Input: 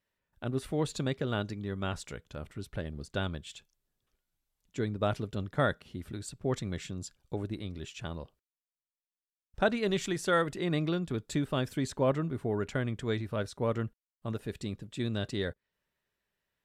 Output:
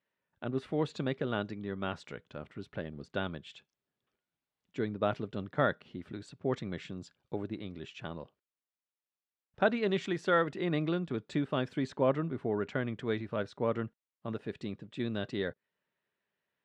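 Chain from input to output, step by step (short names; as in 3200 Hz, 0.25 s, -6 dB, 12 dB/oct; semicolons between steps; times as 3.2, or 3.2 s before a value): BPF 150–3300 Hz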